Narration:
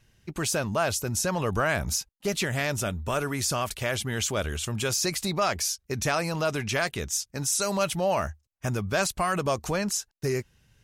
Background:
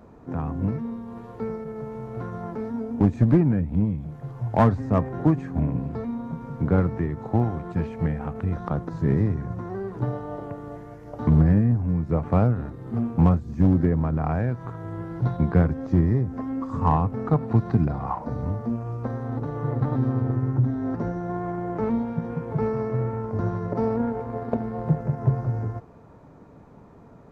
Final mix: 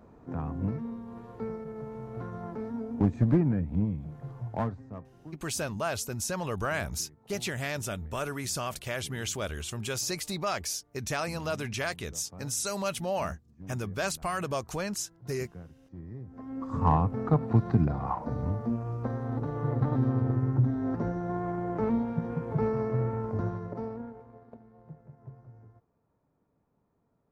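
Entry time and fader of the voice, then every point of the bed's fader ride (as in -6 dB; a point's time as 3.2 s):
5.05 s, -5.5 dB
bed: 4.33 s -5.5 dB
5.2 s -27 dB
15.92 s -27 dB
16.74 s -3 dB
23.3 s -3 dB
24.61 s -25.5 dB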